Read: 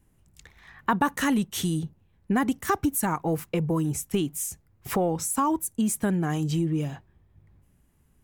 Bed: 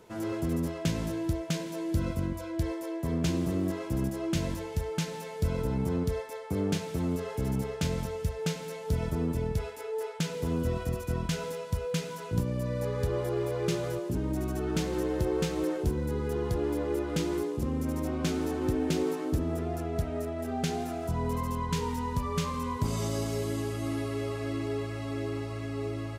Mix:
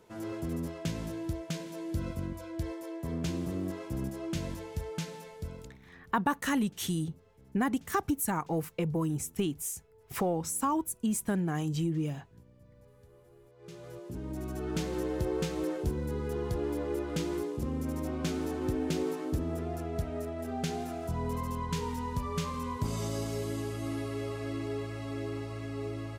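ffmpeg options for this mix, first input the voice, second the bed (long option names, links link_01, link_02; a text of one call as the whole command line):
ffmpeg -i stem1.wav -i stem2.wav -filter_complex "[0:a]adelay=5250,volume=-5dB[link_01];[1:a]volume=20.5dB,afade=type=out:start_time=5.06:duration=0.72:silence=0.0668344,afade=type=in:start_time=13.56:duration=1.25:silence=0.0530884[link_02];[link_01][link_02]amix=inputs=2:normalize=0" out.wav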